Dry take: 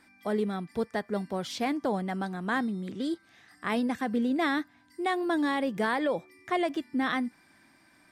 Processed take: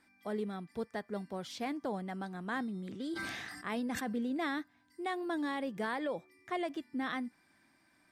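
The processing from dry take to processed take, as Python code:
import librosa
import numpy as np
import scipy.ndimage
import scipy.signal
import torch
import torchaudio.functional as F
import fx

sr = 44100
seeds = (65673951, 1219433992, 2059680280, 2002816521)

y = fx.sustainer(x, sr, db_per_s=26.0, at=(2.34, 4.53), fade=0.02)
y = y * 10.0 ** (-8.0 / 20.0)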